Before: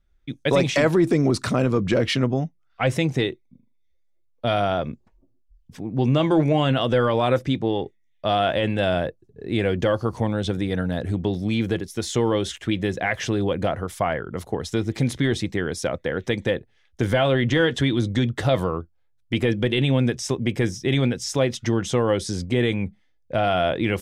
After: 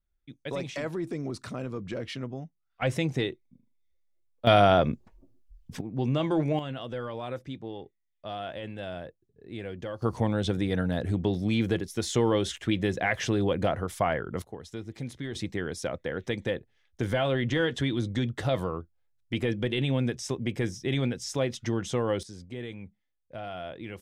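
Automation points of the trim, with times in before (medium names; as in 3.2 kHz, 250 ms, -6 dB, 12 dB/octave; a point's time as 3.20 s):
-14.5 dB
from 2.82 s -6 dB
from 4.47 s +3 dB
from 5.81 s -7.5 dB
from 6.59 s -15.5 dB
from 10.02 s -3 dB
from 14.42 s -14.5 dB
from 15.35 s -7 dB
from 22.23 s -17 dB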